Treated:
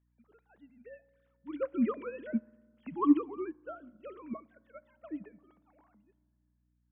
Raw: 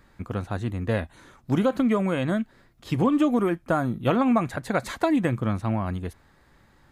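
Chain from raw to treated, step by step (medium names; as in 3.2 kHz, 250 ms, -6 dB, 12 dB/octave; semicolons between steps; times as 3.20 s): formants replaced by sine waves; Doppler pass-by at 2.35 s, 10 m/s, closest 7.4 m; dynamic bell 260 Hz, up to -5 dB, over -39 dBFS, Q 4.6; hum 60 Hz, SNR 26 dB; on a send at -18 dB: reverberation RT60 1.9 s, pre-delay 3 ms; on the sum: upward expansion 1.5:1, over -45 dBFS; trim -2.5 dB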